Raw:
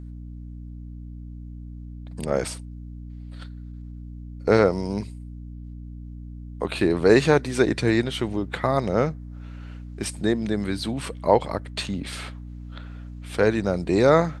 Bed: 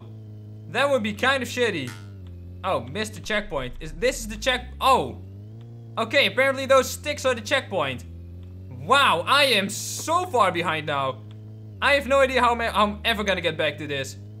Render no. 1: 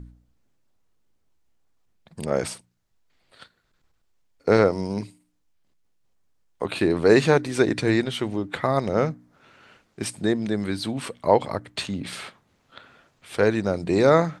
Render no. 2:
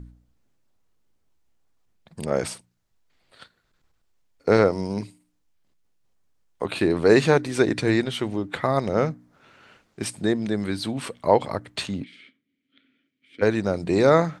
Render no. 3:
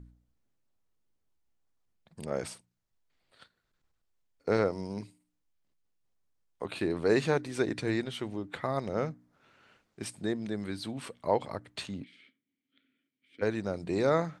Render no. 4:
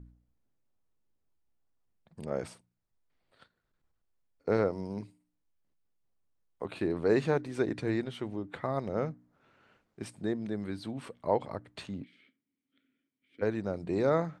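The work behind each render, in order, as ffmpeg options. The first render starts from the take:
-af "bandreject=f=60:t=h:w=4,bandreject=f=120:t=h:w=4,bandreject=f=180:t=h:w=4,bandreject=f=240:t=h:w=4,bandreject=f=300:t=h:w=4"
-filter_complex "[0:a]asplit=3[a][b][c];[a]afade=t=out:st=12.03:d=0.02[d];[b]asplit=3[e][f][g];[e]bandpass=f=270:t=q:w=8,volume=0dB[h];[f]bandpass=f=2.29k:t=q:w=8,volume=-6dB[i];[g]bandpass=f=3.01k:t=q:w=8,volume=-9dB[j];[h][i][j]amix=inputs=3:normalize=0,afade=t=in:st=12.03:d=0.02,afade=t=out:st=13.41:d=0.02[k];[c]afade=t=in:st=13.41:d=0.02[l];[d][k][l]amix=inputs=3:normalize=0"
-af "volume=-9.5dB"
-af "highshelf=f=2.2k:g=-9"

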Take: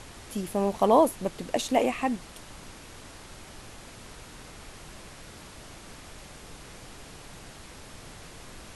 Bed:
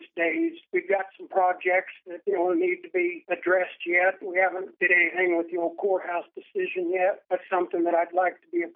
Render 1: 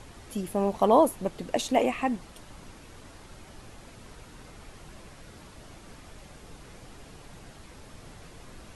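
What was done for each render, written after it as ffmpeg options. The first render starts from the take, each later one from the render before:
-af "afftdn=nr=6:nf=-47"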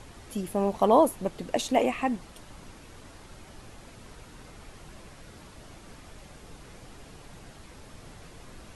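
-af anull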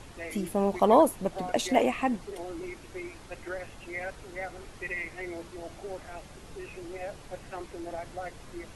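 -filter_complex "[1:a]volume=-15dB[a];[0:a][a]amix=inputs=2:normalize=0"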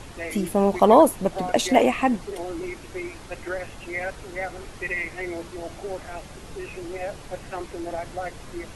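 -af "volume=6.5dB,alimiter=limit=-3dB:level=0:latency=1"

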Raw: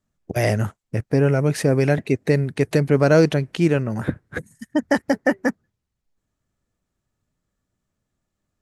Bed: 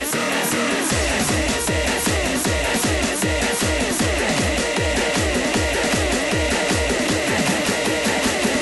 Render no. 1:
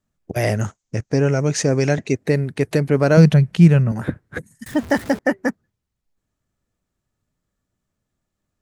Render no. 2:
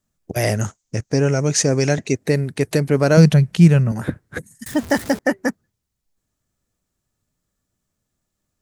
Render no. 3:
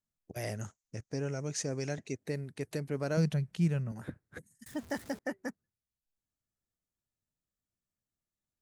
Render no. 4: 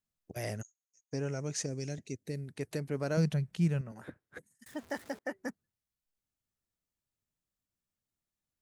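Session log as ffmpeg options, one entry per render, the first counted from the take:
-filter_complex "[0:a]asettb=1/sr,asplit=3[a][b][c];[a]atrim=end=0.614[d];[b]atrim=start=0.61:end=2.15,asetpts=PTS-STARTPTS,afade=t=in:d=0.004:c=qsin,afade=t=out:st=1.536:d=0.004:c=qsin,lowpass=f=6.5k:t=q:w=4.4[e];[c]atrim=start=2.146[f];[d][e]acrossfade=d=0.004:c1=hsin:c2=qsin[g];[g][f]acrossfade=d=0.004:c1=qsin:c2=hsin,asettb=1/sr,asplit=3[h][i][j];[h]atrim=end=3.174[k];[i]atrim=start=3.17:end=3.92,asetpts=PTS-STARTPTS,afade=t=in:d=0.004:c=qsin,afade=t=out:st=0.746:d=0.004:c=qsin,lowshelf=f=230:t=q:w=3:g=6.5[l];[j]atrim=start=3.916[m];[k][l]acrossfade=d=0.004:c1=hsin:c2=qsin[n];[n][m]acrossfade=d=0.004:c1=qsin:c2=hsin,asettb=1/sr,asplit=3[o][p][q];[o]atrim=end=4.664[r];[p]atrim=start=4.66:end=5.19,asetpts=PTS-STARTPTS,afade=t=in:d=0.004:c=qsin,afade=t=out:st=0.526:d=0.004:c=qsin,aeval=exprs='val(0)+0.5*0.0316*sgn(val(0))':c=same[s];[q]atrim=start=5.186[t];[r][s]acrossfade=d=0.004:c1=hsin:c2=qsin[u];[u][t]acrossfade=d=0.004:c1=qsin:c2=hsin"
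-af "bass=f=250:g=0,treble=f=4k:g=7"
-af "volume=-18dB"
-filter_complex "[0:a]asplit=3[a][b][c];[a]afade=t=out:st=0.61:d=0.02[d];[b]bandpass=f=6.6k:t=q:w=18,afade=t=in:st=0.61:d=0.02,afade=t=out:st=1.12:d=0.02[e];[c]afade=t=in:st=1.12:d=0.02[f];[d][e][f]amix=inputs=3:normalize=0,asettb=1/sr,asplit=3[g][h][i];[g]atrim=end=1.664[j];[h]atrim=start=1.66:end=2.48,asetpts=PTS-STARTPTS,afade=t=in:d=0.004:c=qsin,afade=t=out:st=0.816:d=0.004:c=qsin,equalizer=f=1.1k:w=0.68:g=-12.5[k];[i]atrim=start=2.476[l];[j][k]acrossfade=d=0.004:c1=hsin:c2=qsin[m];[m][l]acrossfade=d=0.004:c1=qsin:c2=hsin,asettb=1/sr,asplit=3[n][o][p];[n]atrim=end=3.814[q];[o]atrim=start=3.81:end=5.35,asetpts=PTS-STARTPTS,afade=t=in:d=0.004:c=qsin,afade=t=out:st=1.536:d=0.004:c=qsin,bass=f=250:g=-10,treble=f=4k:g=-4[r];[p]atrim=start=5.346[s];[q][r]acrossfade=d=0.004:c1=hsin:c2=qsin[t];[t][s]acrossfade=d=0.004:c1=qsin:c2=hsin"

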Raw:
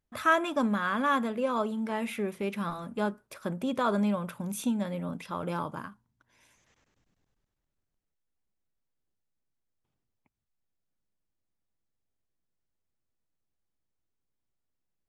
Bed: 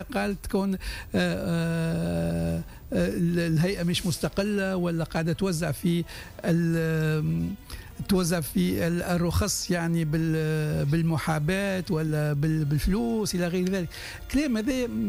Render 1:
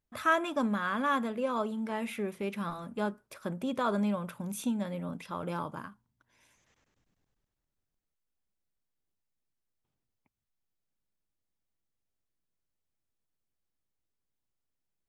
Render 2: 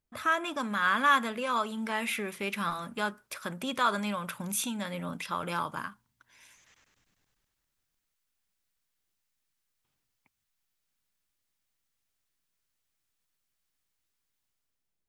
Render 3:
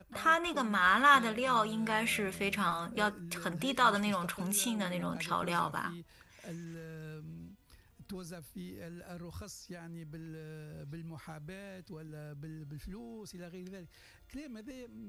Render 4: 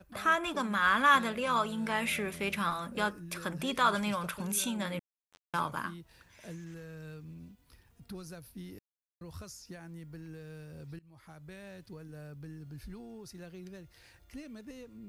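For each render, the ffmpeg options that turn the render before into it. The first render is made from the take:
-af "volume=-2.5dB"
-filter_complex "[0:a]acrossover=split=1100[a][b];[a]alimiter=level_in=5dB:limit=-24dB:level=0:latency=1:release=182,volume=-5dB[c];[b]dynaudnorm=f=180:g=7:m=10dB[d];[c][d]amix=inputs=2:normalize=0"
-filter_complex "[1:a]volume=-21dB[a];[0:a][a]amix=inputs=2:normalize=0"
-filter_complex "[0:a]asettb=1/sr,asplit=3[a][b][c];[a]atrim=end=4.994[d];[b]atrim=start=4.99:end=5.54,asetpts=PTS-STARTPTS,afade=t=in:d=0.004:c=qsin,afade=t=out:st=0.546:d=0.004:c=qsin,acrusher=bits=2:mix=0:aa=0.5[e];[c]atrim=start=5.536[f];[d][e]acrossfade=d=0.004:c1=hsin:c2=qsin[g];[g][f]acrossfade=d=0.004:c1=qsin:c2=hsin,asplit=4[h][i][j][k];[h]atrim=end=8.79,asetpts=PTS-STARTPTS,afade=t=out:st=8.786:d=0.004:c=hsin[l];[i]atrim=start=8.79:end=9.21,asetpts=PTS-STARTPTS,volume=0[m];[j]atrim=start=9.21:end=10.99,asetpts=PTS-STARTPTS,afade=t=in:d=0.004:c=hsin,afade=t=out:st=1.776:d=0.004:c=hsin:silence=0.0891251[n];[k]atrim=start=10.99,asetpts=PTS-STARTPTS,afade=t=in:d=0.68:silence=0.0891251[o];[l][m][n][o]concat=n=4:v=0:a=1"

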